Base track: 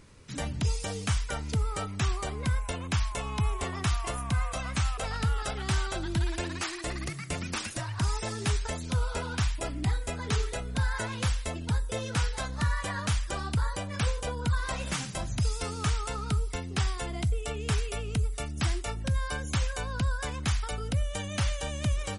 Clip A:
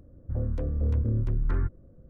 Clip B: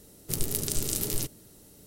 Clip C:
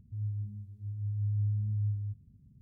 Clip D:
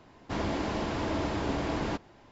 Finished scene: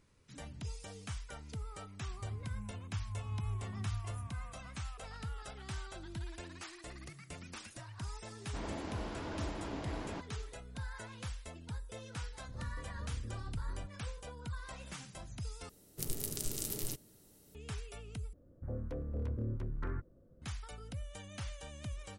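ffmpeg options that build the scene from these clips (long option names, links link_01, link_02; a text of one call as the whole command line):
ffmpeg -i bed.wav -i cue0.wav -i cue1.wav -i cue2.wav -i cue3.wav -filter_complex "[1:a]asplit=2[link_01][link_02];[0:a]volume=-14.5dB[link_03];[3:a]asplit=2[link_04][link_05];[link_05]adelay=43,volume=-3.5dB[link_06];[link_04][link_06]amix=inputs=2:normalize=0[link_07];[link_02]lowshelf=frequency=170:gain=-9[link_08];[link_03]asplit=3[link_09][link_10][link_11];[link_09]atrim=end=15.694[link_12];[2:a]atrim=end=1.86,asetpts=PTS-STARTPTS,volume=-9dB[link_13];[link_10]atrim=start=17.546:end=18.334[link_14];[link_08]atrim=end=2.09,asetpts=PTS-STARTPTS,volume=-5dB[link_15];[link_11]atrim=start=20.416[link_16];[link_07]atrim=end=2.61,asetpts=PTS-STARTPTS,volume=-1.5dB,afade=type=in:duration=0.004:curve=hsin,afade=type=out:start_time=2.606:duration=0.004:curve=hsin,adelay=2100[link_17];[4:a]atrim=end=2.31,asetpts=PTS-STARTPTS,volume=-11dB,afade=type=in:duration=0.004:curve=hsin,afade=type=out:start_time=2.306:duration=0.004:curve=hsin,adelay=8240[link_18];[link_01]atrim=end=2.09,asetpts=PTS-STARTPTS,volume=-17.5dB,afade=type=in:duration=0.004:curve=hsin,afade=type=out:start_time=2.086:duration=0.004:curve=hsin,adelay=12190[link_19];[link_12][link_13]acrossfade=duration=0.004:curve1=hsin:curve2=hsin[link_20];[link_20][link_14]acrossfade=duration=0.004:curve1=hsin:curve2=hsin[link_21];[link_21][link_15]acrossfade=duration=0.004:curve1=hsin:curve2=hsin[link_22];[link_22][link_16]acrossfade=duration=0.004:curve1=hsin:curve2=hsin[link_23];[link_23][link_17][link_18][link_19]amix=inputs=4:normalize=0" out.wav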